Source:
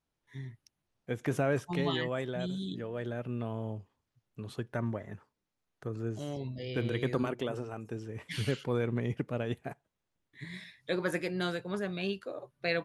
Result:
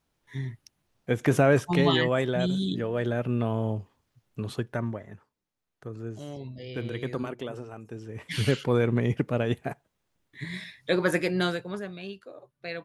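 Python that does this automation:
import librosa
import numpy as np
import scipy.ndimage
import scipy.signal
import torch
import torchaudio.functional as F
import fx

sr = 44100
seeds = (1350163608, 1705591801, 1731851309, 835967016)

y = fx.gain(x, sr, db=fx.line((4.44, 9.0), (5.09, -1.0), (7.92, -1.0), (8.46, 7.5), (11.4, 7.5), (12.02, -5.0)))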